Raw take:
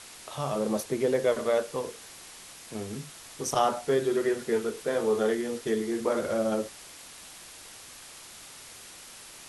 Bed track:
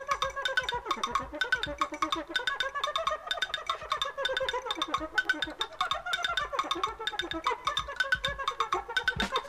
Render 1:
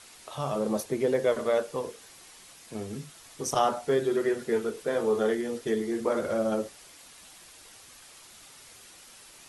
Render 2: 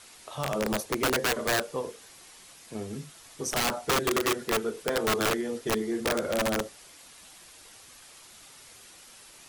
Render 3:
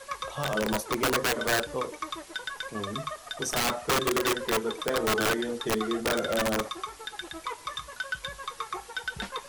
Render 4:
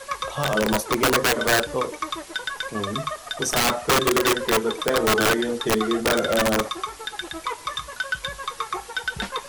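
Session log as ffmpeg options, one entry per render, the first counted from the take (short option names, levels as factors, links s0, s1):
-af "afftdn=nr=6:nf=-48"
-af "aeval=exprs='(mod(10*val(0)+1,2)-1)/10':c=same"
-filter_complex "[1:a]volume=0.531[s0];[0:a][s0]amix=inputs=2:normalize=0"
-af "volume=2.11"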